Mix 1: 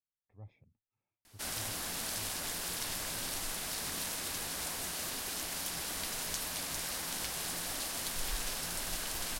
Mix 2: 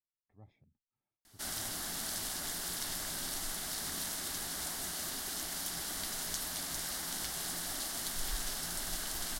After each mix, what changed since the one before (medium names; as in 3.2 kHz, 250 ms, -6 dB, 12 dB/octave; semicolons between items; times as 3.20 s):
master: add graphic EQ with 31 bands 100 Hz -10 dB, 500 Hz -8 dB, 1 kHz -4 dB, 2.5 kHz -9 dB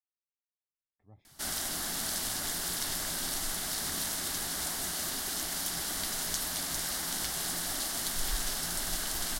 speech: entry +0.70 s; background +4.5 dB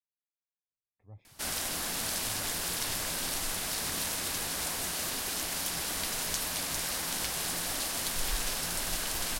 master: add graphic EQ with 31 bands 100 Hz +10 dB, 500 Hz +8 dB, 1 kHz +4 dB, 2.5 kHz +9 dB